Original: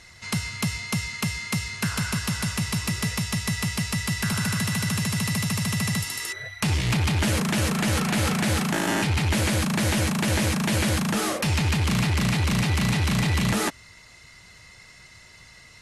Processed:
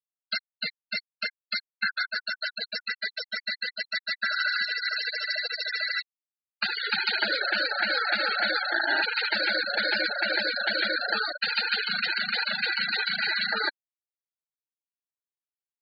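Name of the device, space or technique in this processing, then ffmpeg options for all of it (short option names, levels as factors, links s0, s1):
hand-held game console: -af "acrusher=bits=3:mix=0:aa=0.000001,highpass=480,equalizer=f=1100:t=q:w=4:g=-8,equalizer=f=1500:t=q:w=4:g=10,equalizer=f=4300:t=q:w=4:g=9,lowpass=f=5400:w=0.5412,lowpass=f=5400:w=1.3066,afftfilt=real='re*gte(hypot(re,im),0.126)':imag='im*gte(hypot(re,im),0.126)':win_size=1024:overlap=0.75"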